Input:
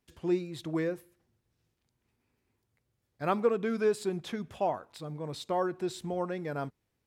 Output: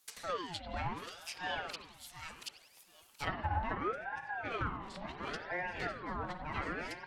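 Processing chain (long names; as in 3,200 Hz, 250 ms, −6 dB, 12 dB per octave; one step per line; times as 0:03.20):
delay that plays each chunk backwards 587 ms, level −1.5 dB
in parallel at 0 dB: downward compressor, threshold −36 dBFS, peak gain reduction 14.5 dB
on the sum: soft clipping −17 dBFS, distortion −21 dB
first-order pre-emphasis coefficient 0.97
on a send: feedback echo with a high-pass in the loop 726 ms, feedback 20%, high-pass 940 Hz, level −6 dB
on the sum: treble cut that deepens with the level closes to 390 Hz, closed at −40.5 dBFS
spring reverb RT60 1.2 s, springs 51 ms, chirp 50 ms, DRR 6.5 dB
ring modulator whose carrier an LFO sweeps 820 Hz, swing 55%, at 0.71 Hz
level +15.5 dB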